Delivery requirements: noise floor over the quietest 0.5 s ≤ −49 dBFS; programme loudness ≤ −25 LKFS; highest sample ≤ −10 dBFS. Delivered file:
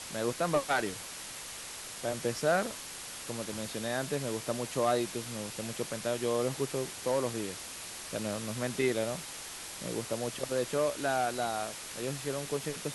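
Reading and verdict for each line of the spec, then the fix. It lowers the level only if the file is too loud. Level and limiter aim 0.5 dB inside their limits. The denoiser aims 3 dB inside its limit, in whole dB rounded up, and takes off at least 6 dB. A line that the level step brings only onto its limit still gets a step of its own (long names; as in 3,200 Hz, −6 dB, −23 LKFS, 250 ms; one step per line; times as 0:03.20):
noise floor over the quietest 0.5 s −43 dBFS: out of spec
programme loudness −33.5 LKFS: in spec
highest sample −16.5 dBFS: in spec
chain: broadband denoise 9 dB, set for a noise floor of −43 dBFS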